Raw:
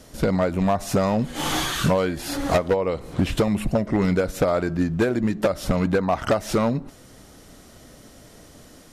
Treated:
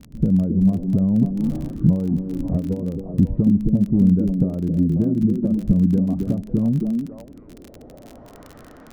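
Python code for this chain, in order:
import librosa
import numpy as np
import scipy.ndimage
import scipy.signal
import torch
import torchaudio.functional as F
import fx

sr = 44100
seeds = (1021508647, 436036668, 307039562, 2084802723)

y = fx.echo_stepped(x, sr, ms=270, hz=300.0, octaves=1.4, feedback_pct=70, wet_db=-1.0)
y = fx.filter_sweep_lowpass(y, sr, from_hz=200.0, to_hz=1400.0, start_s=7.03, end_s=8.53, q=1.7)
y = fx.dmg_crackle(y, sr, seeds[0], per_s=31.0, level_db=-31.0)
y = y * librosa.db_to_amplitude(2.5)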